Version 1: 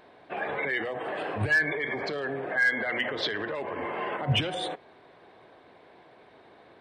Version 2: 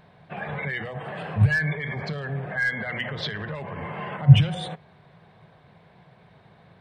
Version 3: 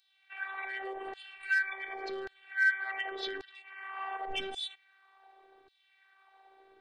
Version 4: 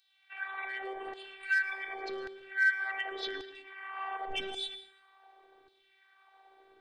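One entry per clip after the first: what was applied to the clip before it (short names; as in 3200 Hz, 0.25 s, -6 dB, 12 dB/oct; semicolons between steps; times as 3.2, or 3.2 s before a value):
resonant low shelf 220 Hz +10.5 dB, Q 3; gain -1 dB
LFO high-pass saw down 0.88 Hz 270–4300 Hz; robotiser 388 Hz; gain -5 dB
plate-style reverb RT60 0.76 s, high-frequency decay 0.9×, pre-delay 95 ms, DRR 13 dB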